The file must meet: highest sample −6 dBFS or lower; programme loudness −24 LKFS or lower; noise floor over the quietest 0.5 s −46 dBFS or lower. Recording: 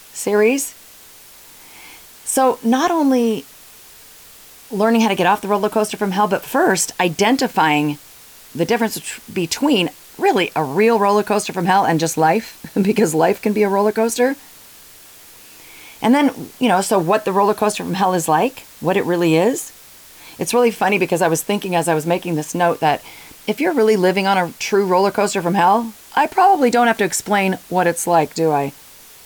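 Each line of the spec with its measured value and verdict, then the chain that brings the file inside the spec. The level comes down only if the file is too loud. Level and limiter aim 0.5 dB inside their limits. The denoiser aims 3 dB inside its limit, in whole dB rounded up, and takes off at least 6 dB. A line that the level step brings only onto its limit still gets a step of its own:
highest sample −4.5 dBFS: out of spec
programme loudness −17.0 LKFS: out of spec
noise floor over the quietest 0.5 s −43 dBFS: out of spec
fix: level −7.5 dB

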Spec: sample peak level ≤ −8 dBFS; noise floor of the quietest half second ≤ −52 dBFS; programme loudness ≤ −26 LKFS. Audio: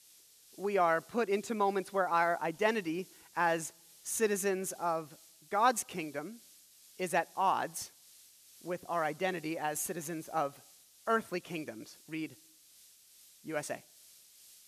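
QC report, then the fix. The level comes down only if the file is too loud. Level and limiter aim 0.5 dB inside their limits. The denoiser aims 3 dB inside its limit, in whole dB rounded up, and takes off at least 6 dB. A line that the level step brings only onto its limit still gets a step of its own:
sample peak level −15.0 dBFS: in spec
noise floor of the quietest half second −61 dBFS: in spec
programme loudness −34.0 LKFS: in spec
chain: no processing needed

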